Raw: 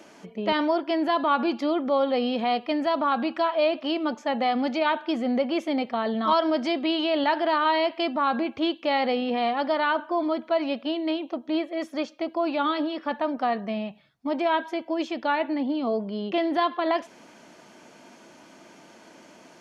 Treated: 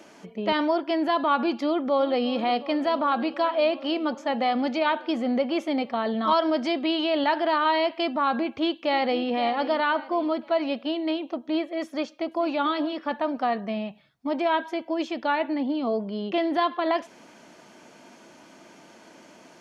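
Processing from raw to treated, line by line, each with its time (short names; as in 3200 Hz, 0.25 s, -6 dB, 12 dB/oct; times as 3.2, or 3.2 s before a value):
1.63–2.26 echo throw 0.36 s, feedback 85%, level -16.5 dB
8.4–9.28 echo throw 0.52 s, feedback 40%, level -13 dB
11.87–12.49 echo throw 0.44 s, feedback 30%, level -17 dB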